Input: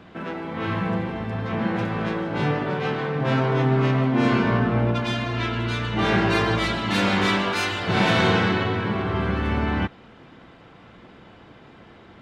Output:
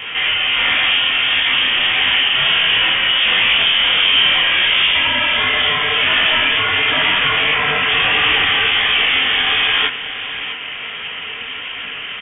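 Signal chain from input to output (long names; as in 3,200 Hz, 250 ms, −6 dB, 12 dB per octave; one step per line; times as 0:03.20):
mid-hump overdrive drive 33 dB, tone 1,700 Hz, clips at −7 dBFS
voice inversion scrambler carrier 3,400 Hz
on a send: single-tap delay 653 ms −13 dB
on the sum: micro pitch shift up and down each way 50 cents
level +3.5 dB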